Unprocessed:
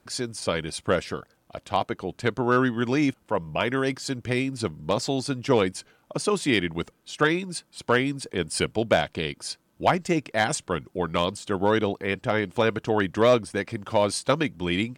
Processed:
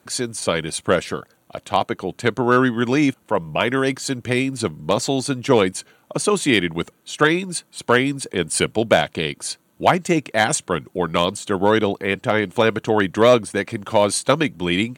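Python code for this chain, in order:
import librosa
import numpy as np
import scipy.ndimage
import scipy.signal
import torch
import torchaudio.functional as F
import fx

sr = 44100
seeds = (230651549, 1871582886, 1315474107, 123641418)

y = scipy.signal.sosfilt(scipy.signal.butter(2, 100.0, 'highpass', fs=sr, output='sos'), x)
y = fx.high_shelf(y, sr, hz=6000.0, db=5.0)
y = fx.notch(y, sr, hz=5100.0, q=5.7)
y = y * librosa.db_to_amplitude(5.5)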